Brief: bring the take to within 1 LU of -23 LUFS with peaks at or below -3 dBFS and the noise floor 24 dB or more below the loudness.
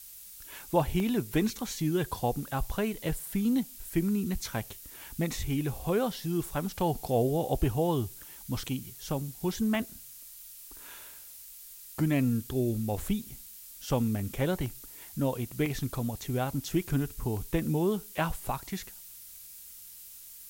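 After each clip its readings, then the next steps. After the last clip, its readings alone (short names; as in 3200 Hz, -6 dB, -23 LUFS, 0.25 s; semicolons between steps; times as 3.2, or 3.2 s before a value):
dropouts 5; longest dropout 1.1 ms; noise floor -48 dBFS; noise floor target -56 dBFS; loudness -31.5 LUFS; peak -12.5 dBFS; loudness target -23.0 LUFS
-> interpolate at 1/9.75/14.66/15.66/17.37, 1.1 ms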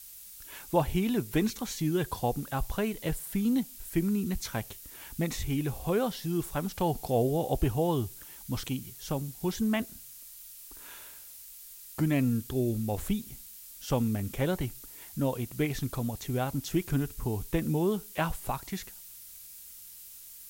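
dropouts 0; noise floor -48 dBFS; noise floor target -56 dBFS
-> noise print and reduce 8 dB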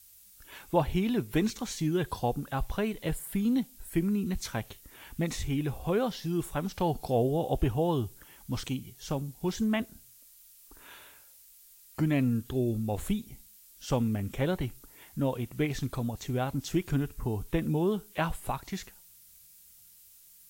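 noise floor -56 dBFS; loudness -31.5 LUFS; peak -12.5 dBFS; loudness target -23.0 LUFS
-> gain +8.5 dB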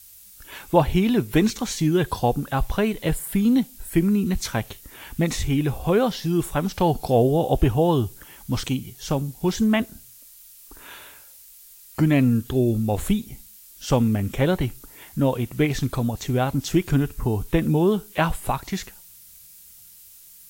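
loudness -23.0 LUFS; peak -4.0 dBFS; noise floor -48 dBFS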